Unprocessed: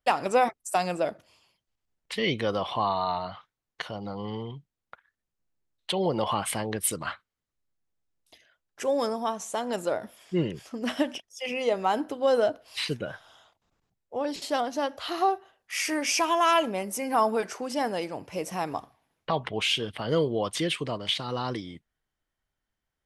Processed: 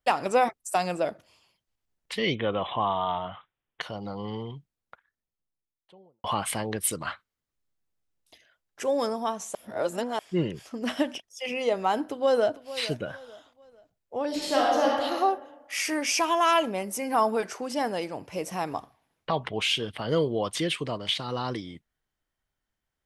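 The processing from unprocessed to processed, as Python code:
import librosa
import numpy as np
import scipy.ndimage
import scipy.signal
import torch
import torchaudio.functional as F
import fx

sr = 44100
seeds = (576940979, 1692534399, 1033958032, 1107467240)

y = fx.resample_bad(x, sr, factor=6, down='none', up='filtered', at=(2.35, 3.81))
y = fx.studio_fade_out(y, sr, start_s=4.5, length_s=1.74)
y = fx.echo_throw(y, sr, start_s=12.05, length_s=0.58, ms=450, feedback_pct=35, wet_db=-15.0)
y = fx.reverb_throw(y, sr, start_s=14.27, length_s=0.71, rt60_s=1.4, drr_db=-4.0)
y = fx.edit(y, sr, fx.reverse_span(start_s=9.55, length_s=0.64), tone=tone)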